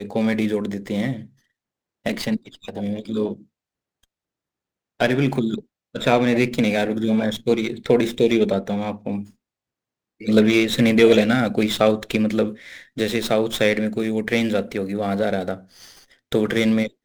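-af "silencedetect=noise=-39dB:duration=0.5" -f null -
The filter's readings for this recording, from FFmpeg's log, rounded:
silence_start: 1.26
silence_end: 2.06 | silence_duration: 0.80
silence_start: 3.42
silence_end: 5.00 | silence_duration: 1.58
silence_start: 9.27
silence_end: 10.21 | silence_duration: 0.93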